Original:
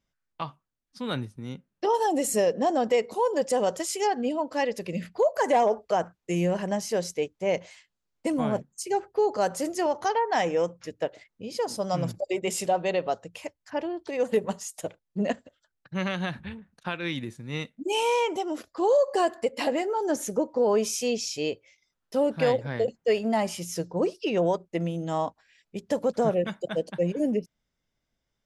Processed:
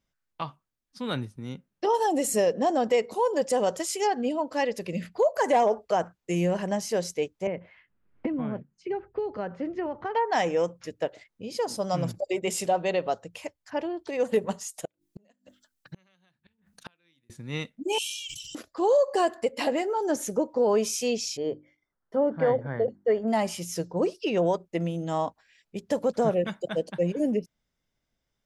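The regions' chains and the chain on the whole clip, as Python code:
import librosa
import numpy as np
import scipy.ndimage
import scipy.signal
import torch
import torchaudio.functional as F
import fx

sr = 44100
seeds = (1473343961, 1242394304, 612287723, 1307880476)

y = fx.chain(x, sr, fx.bessel_lowpass(hz=1600.0, order=4),
    fx.peak_eq(hz=730.0, db=-9.5, octaves=1.7),
    fx.band_squash(depth_pct=100), at=(7.47, 10.15))
y = fx.chain(y, sr, fx.high_shelf(hz=3700.0, db=11.5),
    fx.hum_notches(base_hz=50, count=7),
    fx.gate_flip(shuts_db=-29.0, range_db=-38), at=(14.85, 17.3))
y = fx.chain(y, sr, fx.cheby1_bandstop(low_hz=150.0, high_hz=2800.0, order=5),
    fx.high_shelf(hz=6400.0, db=5.5),
    fx.sustainer(db_per_s=32.0), at=(17.98, 18.55))
y = fx.chain(y, sr, fx.savgol(points=41),
    fx.hum_notches(base_hz=50, count=7), at=(21.37, 23.28))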